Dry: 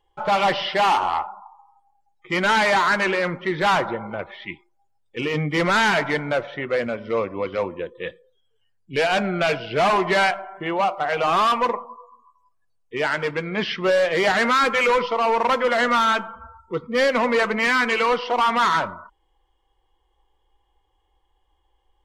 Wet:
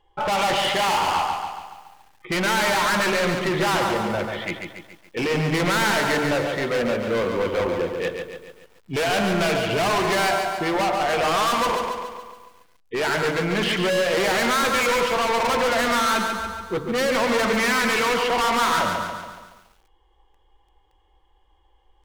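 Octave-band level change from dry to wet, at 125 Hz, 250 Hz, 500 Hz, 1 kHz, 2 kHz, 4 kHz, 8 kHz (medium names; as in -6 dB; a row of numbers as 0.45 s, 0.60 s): +3.0 dB, +2.0 dB, -0.5 dB, -1.5 dB, -1.0 dB, +2.0 dB, +8.5 dB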